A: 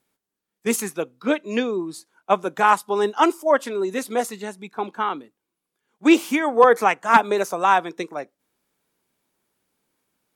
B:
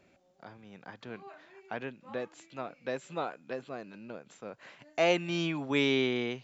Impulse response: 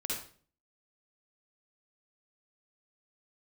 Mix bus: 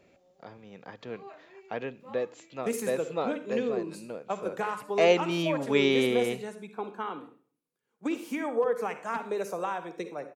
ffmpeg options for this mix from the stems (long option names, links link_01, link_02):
-filter_complex "[0:a]equalizer=frequency=130:width_type=o:width=1.2:gain=7,bandreject=frequency=3500:width=22,acrossover=split=130[link_01][link_02];[link_02]acompressor=threshold=-19dB:ratio=10[link_03];[link_01][link_03]amix=inputs=2:normalize=0,adelay=2000,volume=-12dB,asplit=2[link_04][link_05];[link_05]volume=-9.5dB[link_06];[1:a]bandreject=frequency=1500:width=13,volume=1dB,asplit=2[link_07][link_08];[link_08]volume=-23dB[link_09];[2:a]atrim=start_sample=2205[link_10];[link_06][link_09]amix=inputs=2:normalize=0[link_11];[link_11][link_10]afir=irnorm=-1:irlink=0[link_12];[link_04][link_07][link_12]amix=inputs=3:normalize=0,equalizer=frequency=480:width_type=o:width=0.44:gain=7"